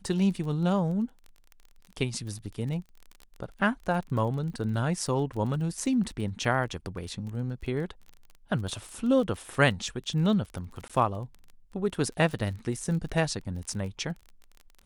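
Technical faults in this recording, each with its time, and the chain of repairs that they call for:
crackle 25 per s -36 dBFS
4.53–4.54 s: dropout 8.9 ms
10.88–10.90 s: dropout 16 ms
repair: de-click; interpolate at 4.53 s, 8.9 ms; interpolate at 10.88 s, 16 ms

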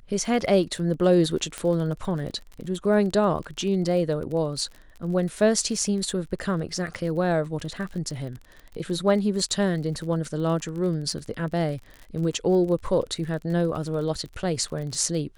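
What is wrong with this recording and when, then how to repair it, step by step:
crackle 32 per s -33 dBFS
1.58 s: pop -15 dBFS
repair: de-click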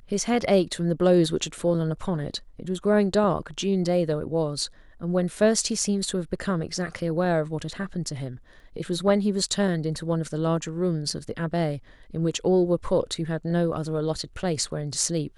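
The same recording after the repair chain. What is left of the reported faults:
nothing left

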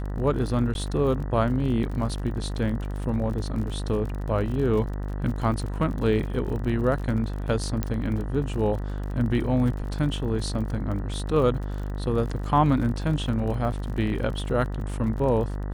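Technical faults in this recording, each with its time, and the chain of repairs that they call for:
buzz 50 Hz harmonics 39 -30 dBFS
crackle 42 per s -33 dBFS
0.74–0.75 s: dropout 11 ms
7.83 s: pop -13 dBFS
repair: de-click; de-hum 50 Hz, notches 39; interpolate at 0.74 s, 11 ms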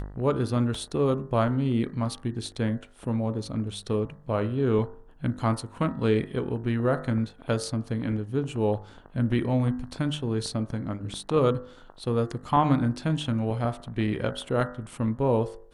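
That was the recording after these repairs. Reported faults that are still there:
nothing left

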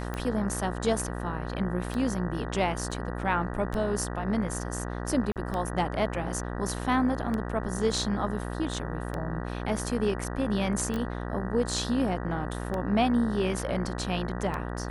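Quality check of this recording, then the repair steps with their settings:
buzz 60 Hz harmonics 32 -34 dBFS
tick 33 1/3 rpm -19 dBFS
2.91–2.92 s: dropout 5.2 ms
5.32–5.36 s: dropout 38 ms
10.96 s: pop -21 dBFS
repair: de-click; de-hum 60 Hz, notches 32; interpolate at 2.91 s, 5.2 ms; interpolate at 5.32 s, 38 ms

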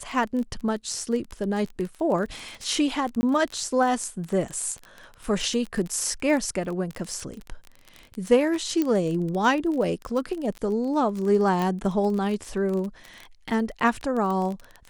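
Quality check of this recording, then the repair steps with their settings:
crackle 22 per s -29 dBFS
3.21–3.23 s: dropout 20 ms
8.82 s: pop -12 dBFS
11.62 s: pop -14 dBFS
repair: de-click; interpolate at 3.21 s, 20 ms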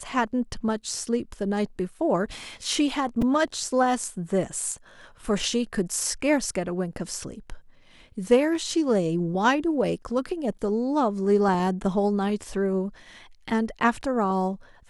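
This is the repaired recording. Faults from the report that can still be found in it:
nothing left

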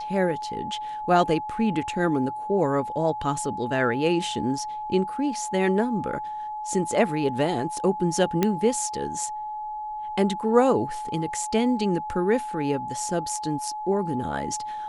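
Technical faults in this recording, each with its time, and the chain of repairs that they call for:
whine 850 Hz -30 dBFS
8.43 s: pop -8 dBFS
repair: de-click; band-stop 850 Hz, Q 30

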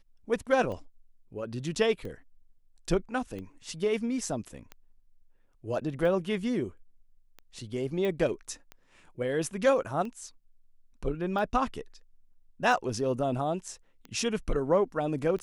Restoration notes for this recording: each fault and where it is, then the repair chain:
tick 45 rpm -28 dBFS
8.05 s: pop -21 dBFS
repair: de-click

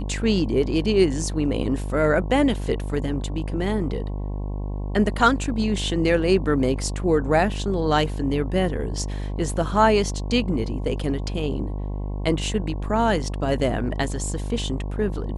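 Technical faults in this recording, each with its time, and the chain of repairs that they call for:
buzz 50 Hz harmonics 22 -28 dBFS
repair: de-hum 50 Hz, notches 22

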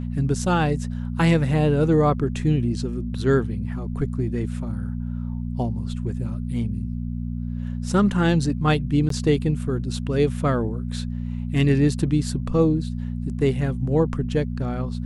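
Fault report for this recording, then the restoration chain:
hum 60 Hz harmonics 4 -28 dBFS
9.09–9.10 s: dropout 13 ms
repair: de-hum 60 Hz, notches 4; interpolate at 9.09 s, 13 ms

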